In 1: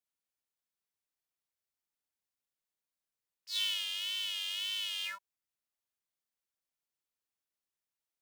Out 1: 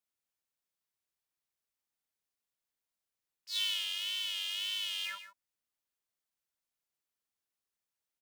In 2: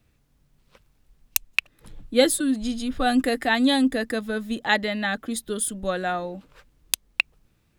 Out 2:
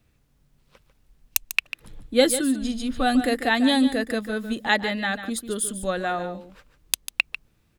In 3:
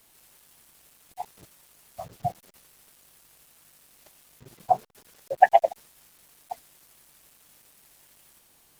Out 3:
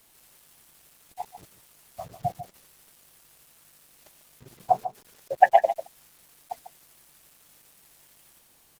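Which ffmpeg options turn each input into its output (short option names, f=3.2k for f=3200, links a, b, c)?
-af "aecho=1:1:146:0.266"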